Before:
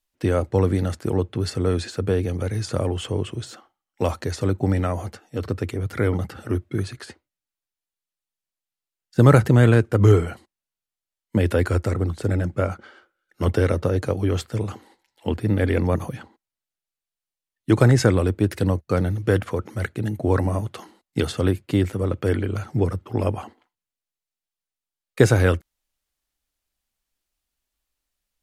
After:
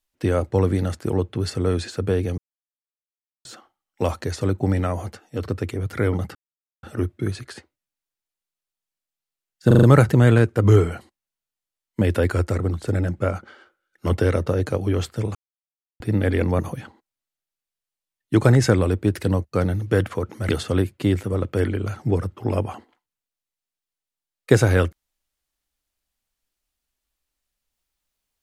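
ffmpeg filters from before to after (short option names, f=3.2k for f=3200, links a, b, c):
-filter_complex "[0:a]asplit=11[a][b][c][d][e][f][g][h][i][j][k];[a]atrim=end=2.38,asetpts=PTS-STARTPTS,afade=t=out:st=2.376:d=0.004:c=hsin[l];[b]atrim=start=2.38:end=3.45,asetpts=PTS-STARTPTS,volume=0[m];[c]atrim=start=3.45:end=6.35,asetpts=PTS-STARTPTS,afade=t=in:d=0.004:c=hsin,afade=t=out:st=2.896:d=0.004:c=hsin,apad=pad_dur=0.48[n];[d]atrim=start=6.35:end=9.232,asetpts=PTS-STARTPTS,afade=t=in:d=0.004:c=hsin[o];[e]atrim=start=9.188:end=9.232[p];[f]atrim=start=9.188:end=9.232[q];[g]atrim=start=9.188:end=9.232[r];[h]atrim=start=9.188:end=14.71,asetpts=PTS-STARTPTS,afade=t=out:st=5.518:d=0.004:c=hsin[s];[i]atrim=start=14.71:end=15.36,asetpts=PTS-STARTPTS,volume=0[t];[j]atrim=start=15.36:end=19.852,asetpts=PTS-STARTPTS,afade=t=in:d=0.004:c=hsin[u];[k]atrim=start=21.178[v];[l][m][n][o]concat=n=4:v=0:a=1[w];[w][p]acrossfade=d=0.004:c1=hsin:c2=hsin[x];[x][q]acrossfade=d=0.004:c1=hsin:c2=hsin[y];[y][r]acrossfade=d=0.004:c1=hsin:c2=hsin[z];[s][t][u]concat=n=3:v=0:a=1[aa];[z][aa]acrossfade=d=0.004:c1=hsin:c2=hsin[ab];[ab][v]acrossfade=d=0.004:c1=hsin:c2=hsin"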